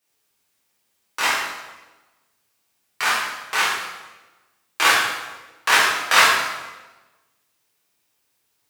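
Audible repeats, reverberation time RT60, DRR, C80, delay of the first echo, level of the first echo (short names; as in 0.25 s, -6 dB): none, 1.2 s, -10.0 dB, 3.0 dB, none, none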